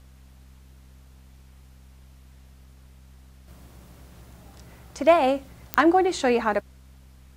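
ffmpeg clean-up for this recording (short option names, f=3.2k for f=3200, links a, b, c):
-af "adeclick=t=4,bandreject=f=65.2:t=h:w=4,bandreject=f=130.4:t=h:w=4,bandreject=f=195.6:t=h:w=4,bandreject=f=260.8:t=h:w=4,agate=range=-21dB:threshold=-43dB"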